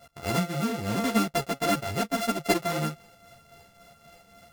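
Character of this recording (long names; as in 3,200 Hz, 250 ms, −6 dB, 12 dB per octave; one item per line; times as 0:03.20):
a buzz of ramps at a fixed pitch in blocks of 64 samples
tremolo triangle 3.7 Hz, depth 60%
a shimmering, thickened sound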